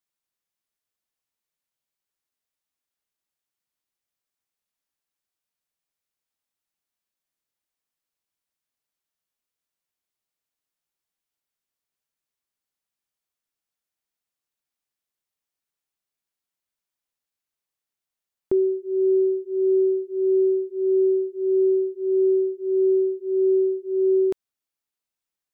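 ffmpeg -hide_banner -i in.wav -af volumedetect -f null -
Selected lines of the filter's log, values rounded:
mean_volume: -27.2 dB
max_volume: -14.8 dB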